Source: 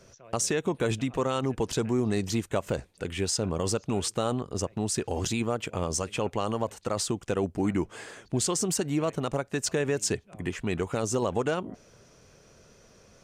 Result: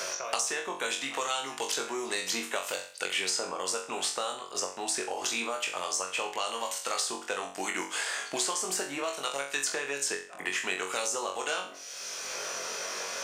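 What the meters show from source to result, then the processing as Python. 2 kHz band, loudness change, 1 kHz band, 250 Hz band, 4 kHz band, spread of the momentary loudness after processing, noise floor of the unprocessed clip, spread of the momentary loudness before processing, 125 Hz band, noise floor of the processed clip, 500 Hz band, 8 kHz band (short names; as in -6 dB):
+5.5 dB, -2.5 dB, +1.0 dB, -13.5 dB, +4.5 dB, 4 LU, -57 dBFS, 6 LU, -26.5 dB, -44 dBFS, -6.5 dB, +1.5 dB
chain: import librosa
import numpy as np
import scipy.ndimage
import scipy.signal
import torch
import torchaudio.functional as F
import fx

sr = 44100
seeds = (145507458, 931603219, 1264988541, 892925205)

p1 = scipy.signal.sosfilt(scipy.signal.butter(2, 820.0, 'highpass', fs=sr, output='sos'), x)
p2 = p1 + fx.room_flutter(p1, sr, wall_m=3.7, rt60_s=0.35, dry=0)
y = fx.band_squash(p2, sr, depth_pct=100)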